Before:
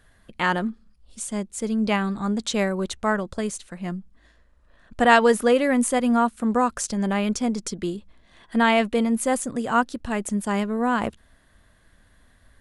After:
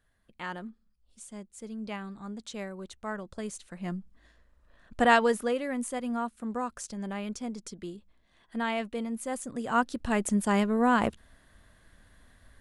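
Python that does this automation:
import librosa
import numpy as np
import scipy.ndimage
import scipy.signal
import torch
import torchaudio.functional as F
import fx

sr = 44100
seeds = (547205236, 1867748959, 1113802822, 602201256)

y = fx.gain(x, sr, db=fx.line((2.93, -15.0), (3.95, -4.0), (5.0, -4.0), (5.62, -12.0), (9.27, -12.0), (10.09, -1.0)))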